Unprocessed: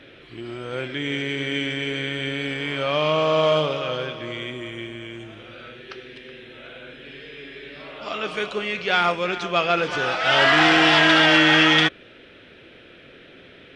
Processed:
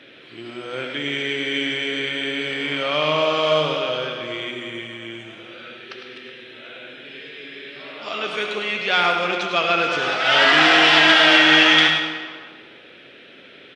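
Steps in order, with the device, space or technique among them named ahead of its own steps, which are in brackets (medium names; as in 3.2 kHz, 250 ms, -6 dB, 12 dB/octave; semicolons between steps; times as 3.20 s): PA in a hall (high-pass 160 Hz 12 dB/octave; peaking EQ 3.5 kHz +4 dB 2 oct; delay 105 ms -9 dB; reverberation RT60 1.6 s, pre-delay 63 ms, DRR 5.5 dB); trim -1 dB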